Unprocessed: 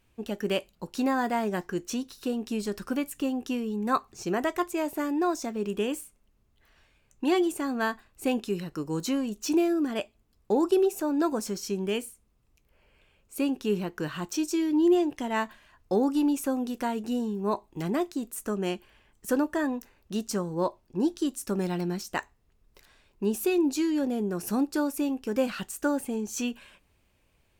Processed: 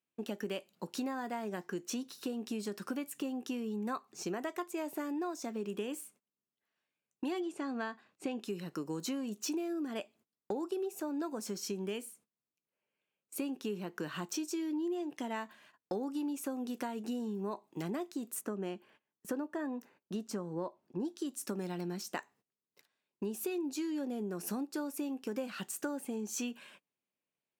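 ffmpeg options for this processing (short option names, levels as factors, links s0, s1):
-filter_complex "[0:a]asettb=1/sr,asplit=3[s0][s1][s2];[s0]atrim=end=7.404[s3];[s1]atrim=start=7.4:end=8.4,asetpts=PTS-STARTPTS,afade=t=in:d=0.004:c=qsin,afade=t=out:st=0.996:d=0.004:c=qsin,lowpass=5600[s4];[s2]atrim=start=8.396[s5];[s3][s4]acrossfade=d=0.004:c1=hsin:c2=qsin[s6];[s6][s5]acrossfade=d=0.004:c1=qsin:c2=hsin,asettb=1/sr,asplit=3[s7][s8][s9];[s7]atrim=end=18.414[s10];[s8]atrim=start=18.41:end=21.05,asetpts=PTS-STARTPTS,afade=t=in:d=0.004:c=qsin,afade=t=out:st=2.636:d=0.004:c=qsin,highshelf=f=2700:g=-9.5[s11];[s9]atrim=start=21.046[s12];[s10][s11]acrossfade=d=0.004:c1=hsin:c2=qsin[s13];[s13][s12]acrossfade=d=0.004:c1=qsin:c2=hsin,highpass=f=160:w=0.5412,highpass=f=160:w=1.3066,agate=range=0.0891:threshold=0.00158:ratio=16:detection=peak,acompressor=threshold=0.0224:ratio=6,volume=0.841"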